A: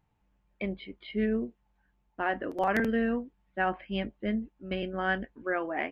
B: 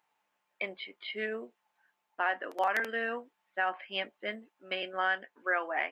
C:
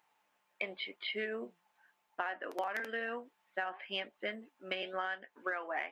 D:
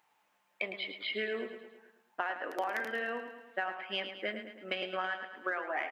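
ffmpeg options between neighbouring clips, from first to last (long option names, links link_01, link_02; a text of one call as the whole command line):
ffmpeg -i in.wav -af "highpass=760,alimiter=limit=-23dB:level=0:latency=1:release=376,volume=5dB" out.wav
ffmpeg -i in.wav -af "flanger=delay=0.3:depth=5.7:regen=88:speed=0.95:shape=triangular,aeval=exprs='0.112*(cos(1*acos(clip(val(0)/0.112,-1,1)))-cos(1*PI/2))+0.00112*(cos(7*acos(clip(val(0)/0.112,-1,1)))-cos(7*PI/2))':channel_layout=same,acompressor=threshold=-42dB:ratio=6,volume=8dB" out.wav
ffmpeg -i in.wav -af "aecho=1:1:108|216|324|432|540|648:0.355|0.188|0.0997|0.0528|0.028|0.0148,volume=2dB" out.wav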